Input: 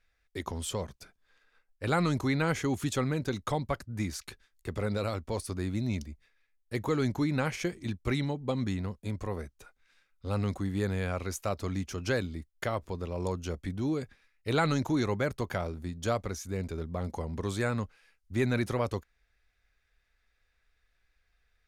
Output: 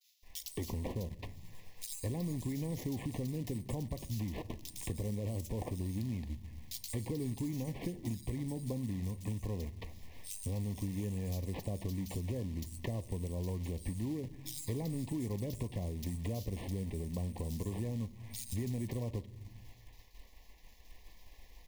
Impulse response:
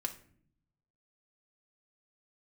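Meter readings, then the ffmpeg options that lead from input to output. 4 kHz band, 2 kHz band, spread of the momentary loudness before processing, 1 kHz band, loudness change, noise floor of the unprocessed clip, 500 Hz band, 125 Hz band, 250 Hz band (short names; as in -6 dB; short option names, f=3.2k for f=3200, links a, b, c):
-8.5 dB, -17.5 dB, 10 LU, -16.0 dB, -6.5 dB, -74 dBFS, -10.5 dB, -3.5 dB, -6.0 dB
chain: -filter_complex "[0:a]aexciter=amount=10.6:drive=8.2:freq=8.8k,lowshelf=f=310:g=11.5,acrusher=samples=5:mix=1:aa=0.000001,agate=range=-33dB:threshold=-57dB:ratio=3:detection=peak,acrossover=split=590|5000[a][b][c];[a]acompressor=threshold=-25dB:ratio=4[d];[b]acompressor=threshold=-46dB:ratio=4[e];[c]acompressor=threshold=-42dB:ratio=4[f];[d][e][f]amix=inputs=3:normalize=0,acrossover=split=3400[g][h];[g]adelay=220[i];[i][h]amix=inputs=2:normalize=0,asplit=2[j][k];[1:a]atrim=start_sample=2205[l];[k][l]afir=irnorm=-1:irlink=0,volume=-5.5dB[m];[j][m]amix=inputs=2:normalize=0,acrusher=bits=5:mode=log:mix=0:aa=0.000001,acompressor=threshold=-45dB:ratio=3,asuperstop=centerf=1400:order=12:qfactor=2.3,volume=4dB"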